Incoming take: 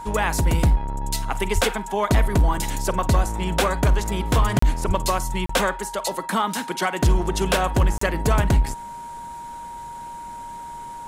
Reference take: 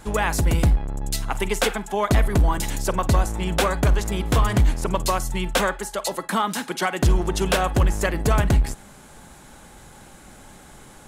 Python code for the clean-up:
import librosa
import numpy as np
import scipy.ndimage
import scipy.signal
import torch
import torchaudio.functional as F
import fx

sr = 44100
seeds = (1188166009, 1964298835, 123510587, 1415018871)

y = fx.notch(x, sr, hz=940.0, q=30.0)
y = fx.fix_deplosive(y, sr, at_s=(1.54, 4.87))
y = fx.fix_interpolate(y, sr, at_s=(4.59, 5.46, 7.98), length_ms=34.0)